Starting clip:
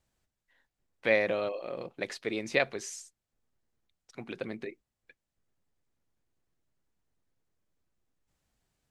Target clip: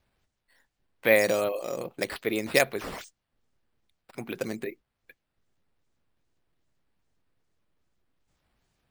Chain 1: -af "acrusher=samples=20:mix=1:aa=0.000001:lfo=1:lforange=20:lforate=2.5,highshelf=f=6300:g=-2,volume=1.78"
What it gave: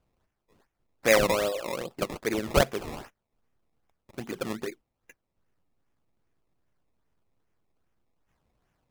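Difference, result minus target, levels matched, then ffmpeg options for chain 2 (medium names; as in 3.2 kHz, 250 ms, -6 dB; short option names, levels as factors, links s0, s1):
decimation with a swept rate: distortion +11 dB
-af "acrusher=samples=5:mix=1:aa=0.000001:lfo=1:lforange=5:lforate=2.5,highshelf=f=6300:g=-2,volume=1.78"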